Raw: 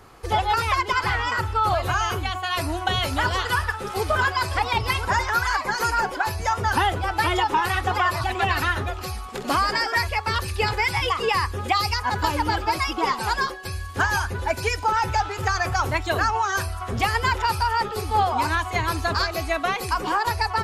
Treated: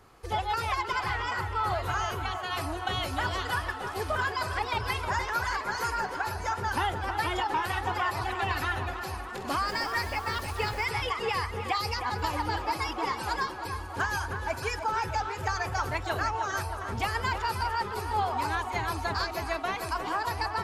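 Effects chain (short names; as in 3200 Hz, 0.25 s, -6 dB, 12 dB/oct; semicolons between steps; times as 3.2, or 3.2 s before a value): 9.67–10.84 added noise pink -40 dBFS; tape echo 0.313 s, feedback 80%, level -7.5 dB, low-pass 2500 Hz; gain -8 dB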